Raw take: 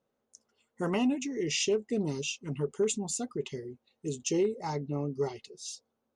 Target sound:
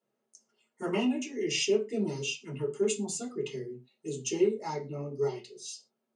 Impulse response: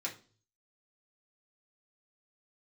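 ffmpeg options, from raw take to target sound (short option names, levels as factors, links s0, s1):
-filter_complex "[1:a]atrim=start_sample=2205,afade=t=out:st=0.21:d=0.01,atrim=end_sample=9702,asetrate=52920,aresample=44100[s0];[0:a][s0]afir=irnorm=-1:irlink=0"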